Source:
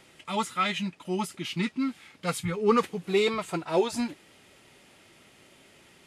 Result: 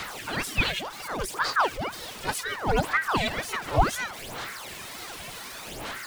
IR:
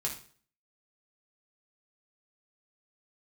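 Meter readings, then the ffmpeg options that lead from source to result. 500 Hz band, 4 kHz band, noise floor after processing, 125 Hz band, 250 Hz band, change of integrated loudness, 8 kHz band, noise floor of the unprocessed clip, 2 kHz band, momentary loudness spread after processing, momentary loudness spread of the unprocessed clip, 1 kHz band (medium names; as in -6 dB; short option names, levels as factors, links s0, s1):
-4.0 dB, +4.0 dB, -40 dBFS, +3.0 dB, -6.5 dB, 0.0 dB, +5.5 dB, -58 dBFS, +8.0 dB, 13 LU, 9 LU, +4.0 dB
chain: -af "aeval=exprs='val(0)+0.5*0.02*sgn(val(0))':c=same,aphaser=in_gain=1:out_gain=1:delay=2.6:decay=0.68:speed=0.68:type=sinusoidal,aeval=exprs='val(0)*sin(2*PI*980*n/s+980*0.8/2*sin(2*PI*2*n/s))':c=same"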